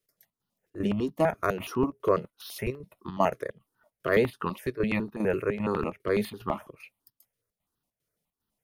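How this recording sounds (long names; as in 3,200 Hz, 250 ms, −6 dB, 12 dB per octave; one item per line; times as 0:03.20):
chopped level 2.5 Hz, depth 65%, duty 75%
notches that jump at a steady rate 12 Hz 220–2,200 Hz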